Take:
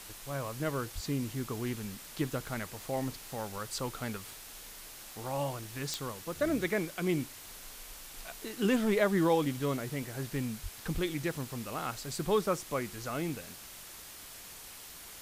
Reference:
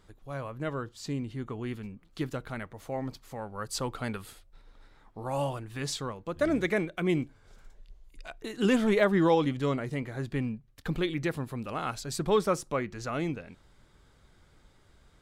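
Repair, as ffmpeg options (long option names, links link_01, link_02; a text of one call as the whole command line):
ffmpeg -i in.wav -filter_complex "[0:a]adeclick=threshold=4,asplit=3[link_01][link_02][link_03];[link_01]afade=type=out:start_time=0.94:duration=0.02[link_04];[link_02]highpass=frequency=140:width=0.5412,highpass=frequency=140:width=1.3066,afade=type=in:start_time=0.94:duration=0.02,afade=type=out:start_time=1.06:duration=0.02[link_05];[link_03]afade=type=in:start_time=1.06:duration=0.02[link_06];[link_04][link_05][link_06]amix=inputs=3:normalize=0,asplit=3[link_07][link_08][link_09];[link_07]afade=type=out:start_time=10.62:duration=0.02[link_10];[link_08]highpass=frequency=140:width=0.5412,highpass=frequency=140:width=1.3066,afade=type=in:start_time=10.62:duration=0.02,afade=type=out:start_time=10.74:duration=0.02[link_11];[link_09]afade=type=in:start_time=10.74:duration=0.02[link_12];[link_10][link_11][link_12]amix=inputs=3:normalize=0,asplit=3[link_13][link_14][link_15];[link_13]afade=type=out:start_time=10.93:duration=0.02[link_16];[link_14]highpass=frequency=140:width=0.5412,highpass=frequency=140:width=1.3066,afade=type=in:start_time=10.93:duration=0.02,afade=type=out:start_time=11.05:duration=0.02[link_17];[link_15]afade=type=in:start_time=11.05:duration=0.02[link_18];[link_16][link_17][link_18]amix=inputs=3:normalize=0,afwtdn=0.0045,asetnsamples=nb_out_samples=441:pad=0,asendcmd='3.58 volume volume 3.5dB',volume=0dB" out.wav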